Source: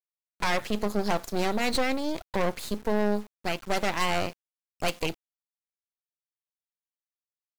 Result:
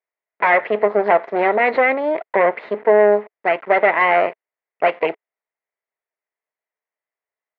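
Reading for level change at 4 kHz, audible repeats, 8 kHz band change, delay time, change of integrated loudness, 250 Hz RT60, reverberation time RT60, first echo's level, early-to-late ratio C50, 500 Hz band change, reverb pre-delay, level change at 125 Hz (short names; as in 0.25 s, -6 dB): -4.5 dB, none, under -30 dB, none, +12.0 dB, none, none, none, none, +14.5 dB, none, n/a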